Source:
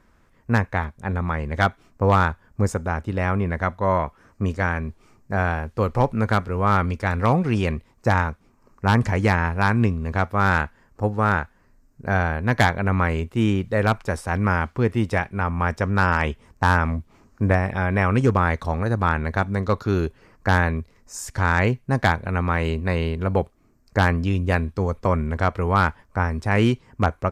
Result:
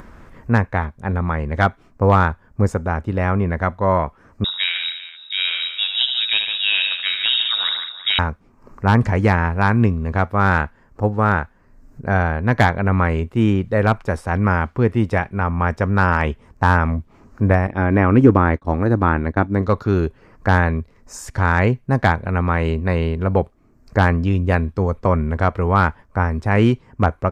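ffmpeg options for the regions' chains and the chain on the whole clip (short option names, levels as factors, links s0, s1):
-filter_complex "[0:a]asettb=1/sr,asplit=3[s0][s1][s2];[s0]atrim=end=4.444[s3];[s1]atrim=start=4.44:end=8.19,asetpts=PTS-STARTPTS,afade=t=in:d=0.004:c=qsin,afade=t=out:st=3.746:d=0.004:c=qsin,aecho=1:1:75|147|194|323|377:0.447|0.447|0.224|0.119|0.133,atrim=end_sample=165375,lowpass=f=3300:t=q:w=0.5098,lowpass=f=3300:t=q:w=0.6013,lowpass=f=3300:t=q:w=0.9,lowpass=f=3300:t=q:w=2.563,afreqshift=-3900[s4];[s2]atrim=start=8.186[s5];[s3][s4]acrossfade=d=0.004:c1=hsin:c2=qsin[s6];[s6][s5]acrossfade=d=0.004:c1=qsin:c2=hsin,asettb=1/sr,asplit=3[s7][s8][s9];[s7]atrim=end=17.674[s10];[s8]atrim=start=17.67:end=19.62,asetpts=PTS-STARTPTS,afade=t=in:d=0.004:c=qsin,afade=t=out:st=1.946:d=0.004:c=qsin,acrossover=split=3100[s11][s12];[s12]acompressor=threshold=0.00447:ratio=4:attack=1:release=60[s13];[s11][s13]amix=inputs=2:normalize=0,agate=range=0.0224:threshold=0.0631:ratio=3:release=100:detection=peak,equalizer=f=300:t=o:w=0.52:g=11[s14];[s9]atrim=start=19.616[s15];[s10][s14]acrossfade=d=0.004:c1=hsin:c2=qsin[s16];[s16][s15]acrossfade=d=0.004:c1=qsin:c2=hsin,highshelf=f=3000:g=-9.5,acompressor=mode=upward:threshold=0.0224:ratio=2.5,volume=1.58"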